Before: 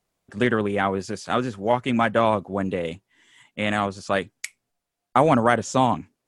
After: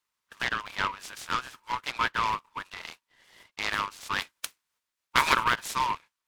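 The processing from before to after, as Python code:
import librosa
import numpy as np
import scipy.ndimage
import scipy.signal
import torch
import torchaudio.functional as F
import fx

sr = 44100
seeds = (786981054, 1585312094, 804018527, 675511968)

y = fx.spec_clip(x, sr, under_db=22, at=(4.18, 5.43), fade=0.02)
y = fx.brickwall_highpass(y, sr, low_hz=870.0)
y = fx.noise_mod_delay(y, sr, seeds[0], noise_hz=1300.0, depth_ms=0.045)
y = y * 10.0 ** (-2.0 / 20.0)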